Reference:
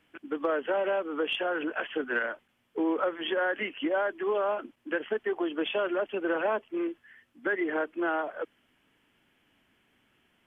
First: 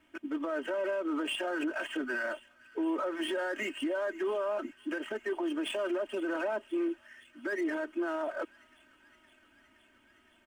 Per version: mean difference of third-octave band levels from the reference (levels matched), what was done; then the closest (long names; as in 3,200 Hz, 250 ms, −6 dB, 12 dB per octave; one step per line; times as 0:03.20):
6.0 dB: running median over 9 samples
comb filter 3.2 ms, depth 85%
brickwall limiter −26 dBFS, peak gain reduction 11.5 dB
on a send: delay with a high-pass on its return 517 ms, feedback 80%, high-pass 2,000 Hz, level −19 dB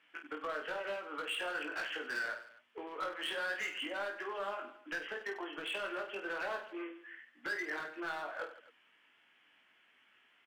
9.5 dB: downward compressor 4 to 1, threshold −33 dBFS, peak gain reduction 8 dB
resonant band-pass 2,000 Hz, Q 0.77
hard clipping −37 dBFS, distortion −12 dB
on a send: reverse bouncing-ball delay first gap 20 ms, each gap 1.5×, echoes 5
on the sum: level +1.5 dB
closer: first